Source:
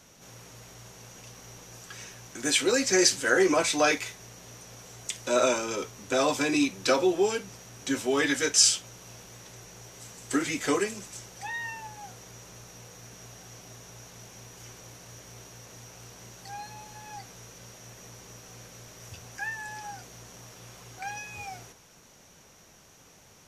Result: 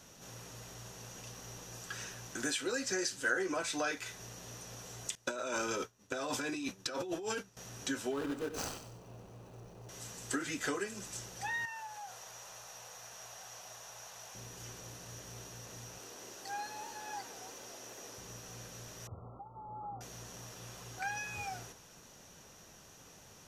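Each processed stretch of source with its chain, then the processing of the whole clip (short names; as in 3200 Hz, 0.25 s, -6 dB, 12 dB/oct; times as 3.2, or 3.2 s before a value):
5.15–7.57 expander -32 dBFS + negative-ratio compressor -32 dBFS
8.11–9.89 median filter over 25 samples + feedback echo 94 ms, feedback 38%, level -12 dB
11.65–14.35 resonant low shelf 460 Hz -13.5 dB, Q 1.5 + compressor 2.5:1, threshold -43 dBFS
15.98–18.18 resonant low shelf 210 Hz -12 dB, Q 1.5 + warbling echo 0.285 s, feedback 54%, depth 202 cents, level -12 dB
19.07–20.01 compressor 10:1, threshold -37 dBFS + brick-wall FIR low-pass 1400 Hz
whole clip: compressor 4:1, threshold -34 dBFS; notch 2200 Hz, Q 11; dynamic EQ 1500 Hz, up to +7 dB, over -57 dBFS, Q 4; gain -1 dB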